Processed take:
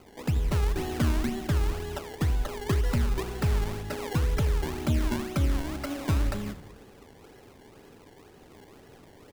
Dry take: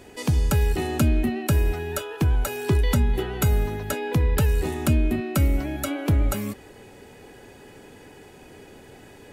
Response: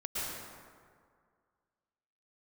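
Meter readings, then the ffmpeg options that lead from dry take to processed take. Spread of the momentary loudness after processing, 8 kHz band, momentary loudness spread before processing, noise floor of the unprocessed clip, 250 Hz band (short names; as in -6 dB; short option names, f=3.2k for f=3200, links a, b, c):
7 LU, -8.0 dB, 6 LU, -48 dBFS, -5.5 dB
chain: -filter_complex "[0:a]highshelf=f=4.6k:g=-10,acrusher=samples=24:mix=1:aa=0.000001:lfo=1:lforange=24:lforate=2,asplit=6[a][b][c][d][e][f];[b]adelay=80,afreqshift=-32,volume=-16dB[g];[c]adelay=160,afreqshift=-64,volume=-20.9dB[h];[d]adelay=240,afreqshift=-96,volume=-25.8dB[i];[e]adelay=320,afreqshift=-128,volume=-30.6dB[j];[f]adelay=400,afreqshift=-160,volume=-35.5dB[k];[a][g][h][i][j][k]amix=inputs=6:normalize=0,asplit=2[l][m];[1:a]atrim=start_sample=2205[n];[m][n]afir=irnorm=-1:irlink=0,volume=-24.5dB[o];[l][o]amix=inputs=2:normalize=0,volume=-5.5dB"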